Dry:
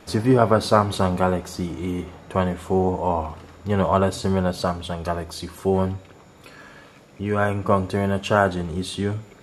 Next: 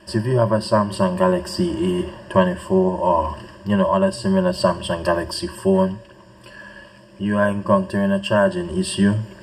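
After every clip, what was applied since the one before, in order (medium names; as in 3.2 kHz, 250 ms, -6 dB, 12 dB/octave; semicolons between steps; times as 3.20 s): rippled EQ curve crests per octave 1.3, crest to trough 18 dB; gain riding within 5 dB 0.5 s; trim -1 dB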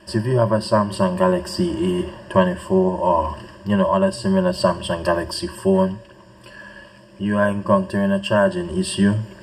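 no audible change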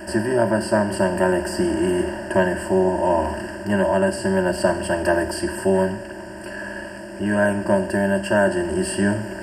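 spectral levelling over time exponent 0.6; static phaser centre 730 Hz, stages 8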